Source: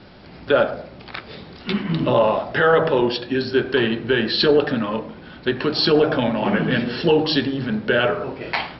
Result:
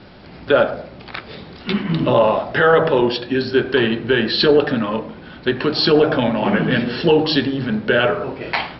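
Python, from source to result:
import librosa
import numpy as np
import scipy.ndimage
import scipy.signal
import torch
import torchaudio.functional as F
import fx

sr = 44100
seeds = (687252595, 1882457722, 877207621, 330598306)

y = scipy.signal.sosfilt(scipy.signal.butter(2, 6000.0, 'lowpass', fs=sr, output='sos'), x)
y = F.gain(torch.from_numpy(y), 2.5).numpy()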